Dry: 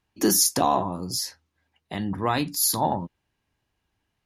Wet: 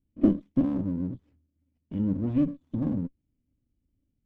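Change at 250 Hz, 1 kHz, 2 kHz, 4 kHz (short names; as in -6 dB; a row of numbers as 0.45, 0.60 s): +3.5 dB, -25.0 dB, under -20 dB, under -30 dB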